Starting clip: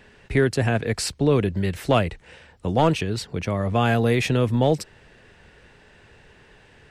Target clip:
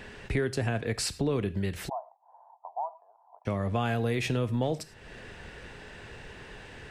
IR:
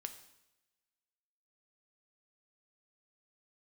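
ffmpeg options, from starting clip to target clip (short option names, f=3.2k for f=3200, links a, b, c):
-filter_complex "[0:a]asplit=2[a][b];[1:a]atrim=start_sample=2205,afade=t=out:st=0.2:d=0.01,atrim=end_sample=9261,asetrate=57330,aresample=44100[c];[b][c]afir=irnorm=-1:irlink=0,volume=6dB[d];[a][d]amix=inputs=2:normalize=0,acompressor=threshold=-33dB:ratio=2.5,asplit=3[e][f][g];[e]afade=t=out:st=1.88:d=0.02[h];[f]asuperpass=centerf=830:order=8:qfactor=2.3,afade=t=in:st=1.88:d=0.02,afade=t=out:st=3.45:d=0.02[i];[g]afade=t=in:st=3.45:d=0.02[j];[h][i][j]amix=inputs=3:normalize=0"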